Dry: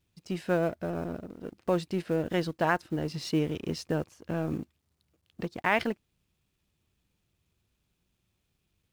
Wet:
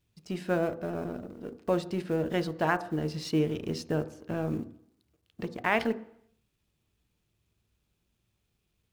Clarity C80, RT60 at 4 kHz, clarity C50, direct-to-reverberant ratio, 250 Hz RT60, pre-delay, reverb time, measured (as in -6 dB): 19.0 dB, 0.70 s, 16.5 dB, 10.5 dB, 0.70 s, 3 ms, 0.70 s